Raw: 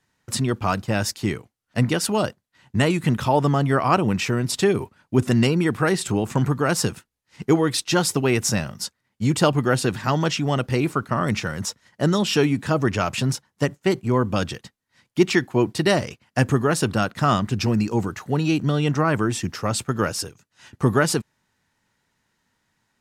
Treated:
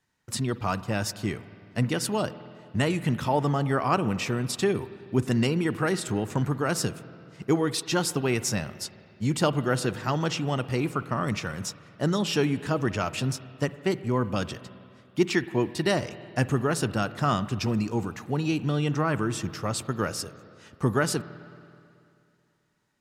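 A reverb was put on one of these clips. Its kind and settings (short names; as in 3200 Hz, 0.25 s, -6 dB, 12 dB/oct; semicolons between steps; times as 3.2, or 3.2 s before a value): spring tank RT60 2.5 s, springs 48/54 ms, chirp 35 ms, DRR 14.5 dB; gain -5.5 dB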